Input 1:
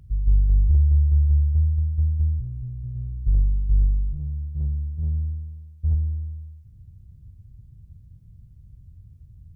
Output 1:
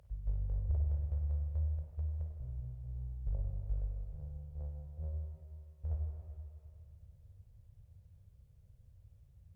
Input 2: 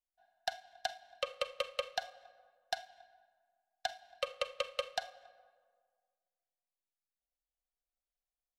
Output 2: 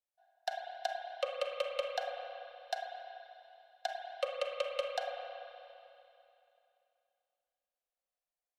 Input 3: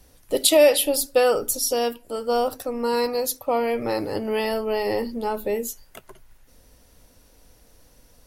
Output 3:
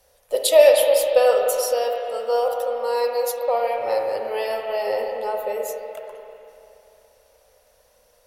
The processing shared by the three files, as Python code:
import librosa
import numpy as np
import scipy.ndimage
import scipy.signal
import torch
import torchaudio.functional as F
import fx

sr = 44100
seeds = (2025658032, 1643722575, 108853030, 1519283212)

y = fx.low_shelf_res(x, sr, hz=390.0, db=-11.0, q=3.0)
y = fx.cheby_harmonics(y, sr, harmonics=(3, 4), levels_db=(-26, -40), full_scale_db=-0.5)
y = fx.rev_spring(y, sr, rt60_s=2.8, pass_ms=(31, 48, 53), chirp_ms=80, drr_db=1.0)
y = y * librosa.db_to_amplitude(-2.5)